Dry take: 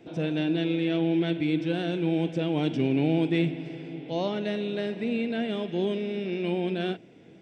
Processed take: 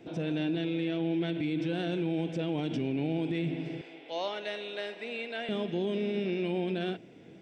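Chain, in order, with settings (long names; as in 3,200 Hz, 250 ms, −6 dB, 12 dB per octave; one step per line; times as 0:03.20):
0:03.81–0:05.49: high-pass filter 660 Hz 12 dB per octave
brickwall limiter −23.5 dBFS, peak gain reduction 9 dB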